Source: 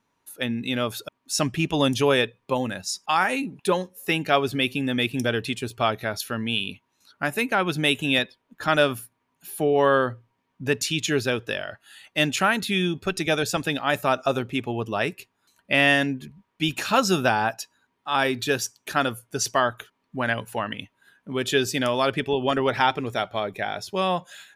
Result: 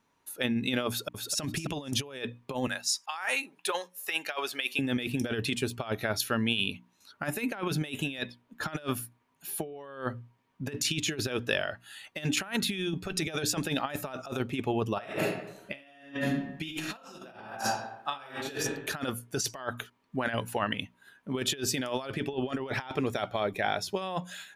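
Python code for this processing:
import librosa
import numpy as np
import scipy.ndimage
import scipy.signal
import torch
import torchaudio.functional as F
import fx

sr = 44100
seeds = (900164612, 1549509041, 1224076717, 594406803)

y = fx.echo_throw(x, sr, start_s=0.88, length_s=0.52, ms=260, feedback_pct=15, wet_db=-4.0)
y = fx.highpass(y, sr, hz=790.0, slope=12, at=(2.67, 4.79))
y = fx.reverb_throw(y, sr, start_s=14.94, length_s=3.56, rt60_s=0.86, drr_db=-4.5)
y = fx.hum_notches(y, sr, base_hz=60, count=5)
y = fx.over_compress(y, sr, threshold_db=-27.0, ratio=-0.5)
y = y * librosa.db_to_amplitude(-4.5)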